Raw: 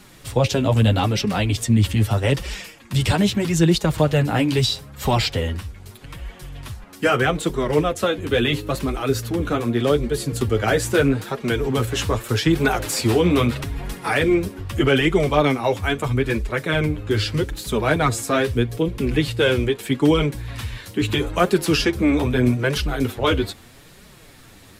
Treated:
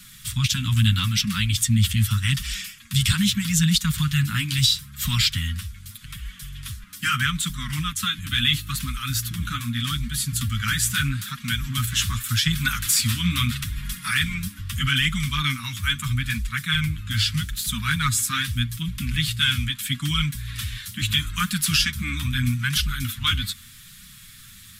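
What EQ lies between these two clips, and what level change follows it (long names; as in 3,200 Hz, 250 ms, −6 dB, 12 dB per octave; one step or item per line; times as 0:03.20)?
inverse Chebyshev band-stop filter 360–750 Hz, stop band 50 dB
parametric band 3,400 Hz +6 dB 0.21 octaves
high-shelf EQ 5,800 Hz +11 dB
−1.5 dB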